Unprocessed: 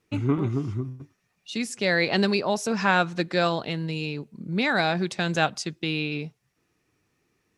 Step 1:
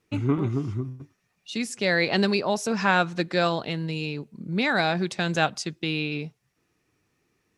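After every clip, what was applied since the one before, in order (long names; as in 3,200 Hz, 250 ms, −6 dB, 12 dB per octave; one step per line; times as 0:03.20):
no processing that can be heard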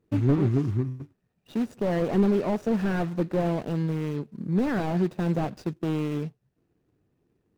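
running median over 41 samples
slew-rate limiting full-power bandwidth 30 Hz
level +3.5 dB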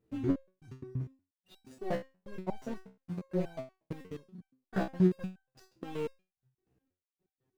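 gate pattern "xxx...x." 146 BPM −60 dB
step-sequenced resonator 8.4 Hz 64–770 Hz
level +4 dB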